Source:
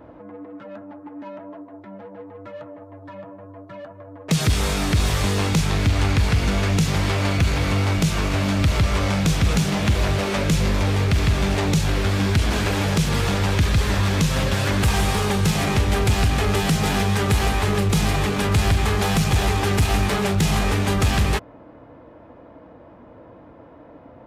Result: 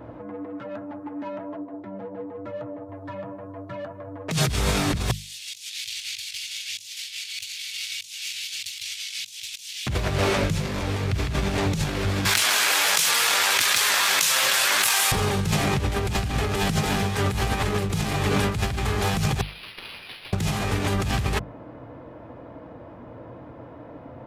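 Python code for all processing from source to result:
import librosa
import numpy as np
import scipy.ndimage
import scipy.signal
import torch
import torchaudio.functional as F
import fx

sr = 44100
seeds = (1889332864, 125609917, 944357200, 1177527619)

y = fx.chain(x, sr, fx.highpass(hz=220.0, slope=6),
    fx.tilt_shelf(db=5.5, hz=650.0), at=(1.56, 2.89))
y = fx.chain(y, sr, fx.cheby2_highpass(hz=1100.0, order=4, stop_db=50),
    fx.over_compress(threshold_db=-37.0, ratio=-0.5), at=(5.11, 9.87))
y = fx.chain(y, sr, fx.highpass(hz=1100.0, slope=12),
    fx.high_shelf(hz=7600.0, db=11.0),
    fx.env_flatten(amount_pct=100), at=(12.25, 15.12))
y = fx.chain(y, sr, fx.steep_highpass(hz=2600.0, slope=36),
    fx.tilt_eq(slope=-4.0),
    fx.resample_linear(factor=6), at=(19.41, 20.33))
y = fx.over_compress(y, sr, threshold_db=-23.0, ratio=-1.0)
y = fx.peak_eq(y, sr, hz=120.0, db=7.0, octaves=0.53)
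y = fx.hum_notches(y, sr, base_hz=50, count=4)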